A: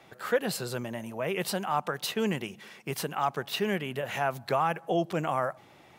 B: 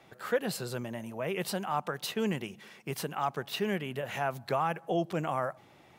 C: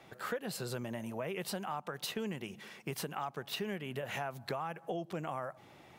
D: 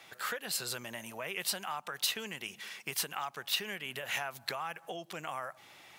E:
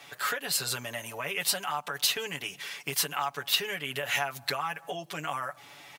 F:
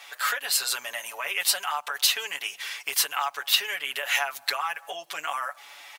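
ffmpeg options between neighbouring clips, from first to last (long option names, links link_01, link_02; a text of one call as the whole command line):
ffmpeg -i in.wav -af "lowshelf=frequency=370:gain=2.5,volume=-3.5dB" out.wav
ffmpeg -i in.wav -af "acompressor=threshold=-36dB:ratio=6,volume=1dB" out.wav
ffmpeg -i in.wav -af "tiltshelf=frequency=900:gain=-9.5" out.wav
ffmpeg -i in.wav -af "aecho=1:1:7:0.77,volume=4dB" out.wav
ffmpeg -i in.wav -af "highpass=780,volume=4.5dB" out.wav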